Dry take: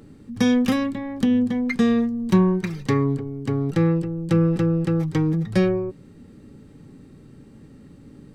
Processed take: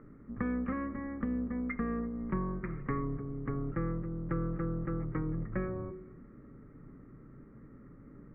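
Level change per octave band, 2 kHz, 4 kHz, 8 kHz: −12.5 dB, below −40 dB, can't be measured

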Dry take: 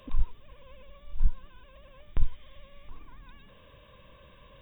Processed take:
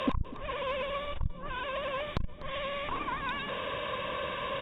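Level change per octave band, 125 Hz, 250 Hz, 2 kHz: 0.0, +13.5, +21.0 decibels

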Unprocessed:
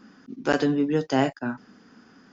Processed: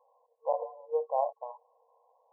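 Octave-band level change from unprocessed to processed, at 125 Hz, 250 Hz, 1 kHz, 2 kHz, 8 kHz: below −40 dB, below −40 dB, −3.0 dB, below −40 dB, can't be measured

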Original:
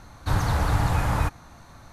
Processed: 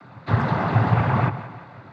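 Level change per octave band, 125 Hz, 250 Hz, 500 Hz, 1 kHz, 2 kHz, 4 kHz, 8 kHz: +4.0 dB, +7.0 dB, +6.0 dB, +4.5 dB, +3.5 dB, −4.0 dB, below −20 dB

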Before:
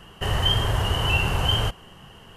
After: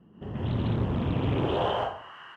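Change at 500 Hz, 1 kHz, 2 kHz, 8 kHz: +1.5 dB, −2.5 dB, −13.0 dB, below −25 dB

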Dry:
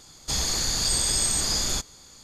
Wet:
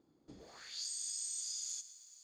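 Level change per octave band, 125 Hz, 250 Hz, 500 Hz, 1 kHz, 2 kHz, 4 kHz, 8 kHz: below −30 dB, below −20 dB, below −20 dB, below −25 dB, −23.5 dB, −20.0 dB, −16.0 dB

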